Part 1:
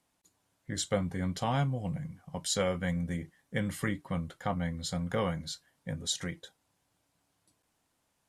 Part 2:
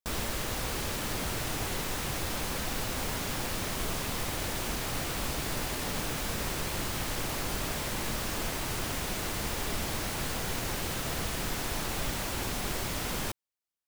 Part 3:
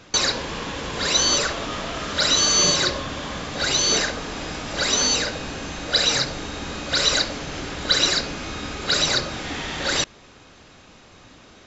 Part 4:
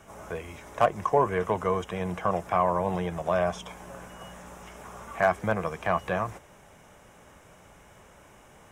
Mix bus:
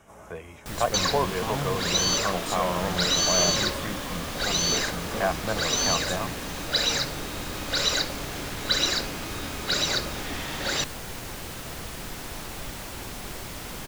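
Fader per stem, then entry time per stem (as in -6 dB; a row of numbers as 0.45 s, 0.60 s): -3.5 dB, -3.5 dB, -5.0 dB, -3.0 dB; 0.00 s, 0.60 s, 0.80 s, 0.00 s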